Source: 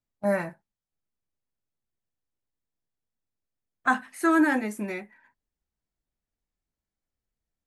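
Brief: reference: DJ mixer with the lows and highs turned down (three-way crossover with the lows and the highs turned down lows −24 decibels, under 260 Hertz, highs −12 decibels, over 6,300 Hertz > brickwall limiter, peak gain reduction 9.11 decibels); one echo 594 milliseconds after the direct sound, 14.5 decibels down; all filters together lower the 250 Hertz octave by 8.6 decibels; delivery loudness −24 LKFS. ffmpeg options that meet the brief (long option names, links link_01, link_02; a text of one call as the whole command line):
ffmpeg -i in.wav -filter_complex "[0:a]acrossover=split=260 6300:gain=0.0631 1 0.251[link_01][link_02][link_03];[link_01][link_02][link_03]amix=inputs=3:normalize=0,equalizer=frequency=250:width_type=o:gain=-7,aecho=1:1:594:0.188,volume=10dB,alimiter=limit=-11.5dB:level=0:latency=1" out.wav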